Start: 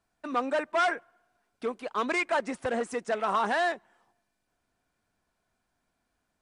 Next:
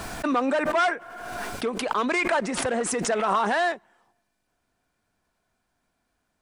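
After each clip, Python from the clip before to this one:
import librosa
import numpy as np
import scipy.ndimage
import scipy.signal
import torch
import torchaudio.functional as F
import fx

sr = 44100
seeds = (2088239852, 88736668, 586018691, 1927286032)

y = fx.pre_swell(x, sr, db_per_s=31.0)
y = y * 10.0 ** (3.0 / 20.0)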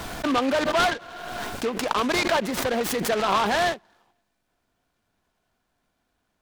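y = fx.noise_mod_delay(x, sr, seeds[0], noise_hz=1800.0, depth_ms=0.062)
y = y * 10.0 ** (1.0 / 20.0)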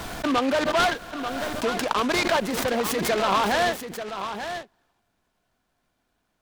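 y = x + 10.0 ** (-9.5 / 20.0) * np.pad(x, (int(888 * sr / 1000.0), 0))[:len(x)]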